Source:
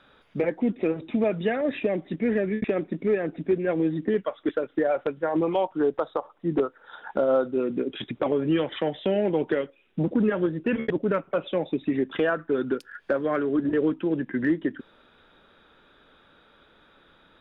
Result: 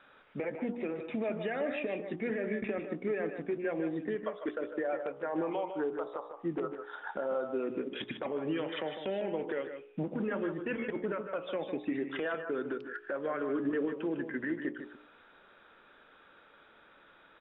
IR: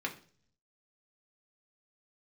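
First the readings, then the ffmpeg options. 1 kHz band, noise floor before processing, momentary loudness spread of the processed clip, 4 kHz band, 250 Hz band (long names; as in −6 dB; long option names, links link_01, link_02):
−7.5 dB, −59 dBFS, 5 LU, can't be measured, −10.0 dB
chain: -filter_complex "[0:a]lowpass=frequency=3000:width=0.5412,lowpass=frequency=3000:width=1.3066,lowshelf=frequency=280:gain=-12,bandreject=frequency=59.83:width_type=h:width=4,bandreject=frequency=119.66:width_type=h:width=4,bandreject=frequency=179.49:width_type=h:width=4,bandreject=frequency=239.32:width_type=h:width=4,bandreject=frequency=299.15:width_type=h:width=4,bandreject=frequency=358.98:width_type=h:width=4,bandreject=frequency=418.81:width_type=h:width=4,bandreject=frequency=478.64:width_type=h:width=4,bandreject=frequency=538.47:width_type=h:width=4,bandreject=frequency=598.3:width_type=h:width=4,bandreject=frequency=658.13:width_type=h:width=4,bandreject=frequency=717.96:width_type=h:width=4,bandreject=frequency=777.79:width_type=h:width=4,bandreject=frequency=837.62:width_type=h:width=4,bandreject=frequency=897.45:width_type=h:width=4,bandreject=frequency=957.28:width_type=h:width=4,bandreject=frequency=1017.11:width_type=h:width=4,bandreject=frequency=1076.94:width_type=h:width=4,bandreject=frequency=1136.77:width_type=h:width=4,bandreject=frequency=1196.6:width_type=h:width=4,bandreject=frequency=1256.43:width_type=h:width=4,bandreject=frequency=1316.26:width_type=h:width=4,alimiter=level_in=1.5dB:limit=-24dB:level=0:latency=1:release=209,volume=-1.5dB,asplit=2[link_01][link_02];[link_02]aecho=0:1:139|153:0.133|0.376[link_03];[link_01][link_03]amix=inputs=2:normalize=0"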